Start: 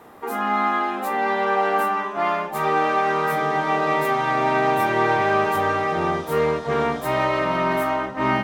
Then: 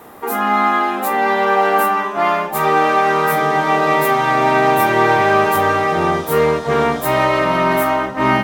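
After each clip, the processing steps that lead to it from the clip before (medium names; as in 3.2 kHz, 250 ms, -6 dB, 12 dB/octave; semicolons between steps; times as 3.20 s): treble shelf 10 kHz +11.5 dB; trim +6 dB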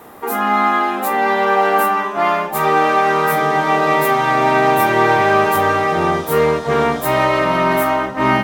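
no audible change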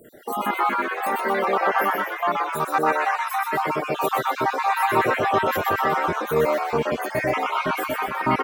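random holes in the spectrogram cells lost 66%; frequency-shifting echo 124 ms, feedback 50%, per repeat +140 Hz, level -3.5 dB; trim -5 dB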